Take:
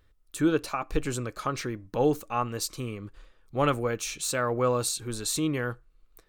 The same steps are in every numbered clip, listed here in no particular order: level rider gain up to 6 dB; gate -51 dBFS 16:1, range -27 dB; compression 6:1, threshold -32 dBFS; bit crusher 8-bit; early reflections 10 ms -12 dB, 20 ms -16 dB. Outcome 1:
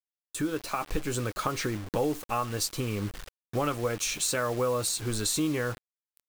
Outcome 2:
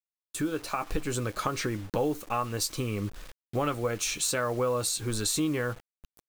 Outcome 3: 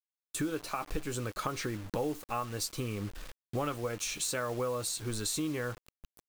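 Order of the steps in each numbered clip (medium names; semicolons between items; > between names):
gate > compression > early reflections > bit crusher > level rider; compression > early reflections > gate > level rider > bit crusher; early reflections > gate > level rider > compression > bit crusher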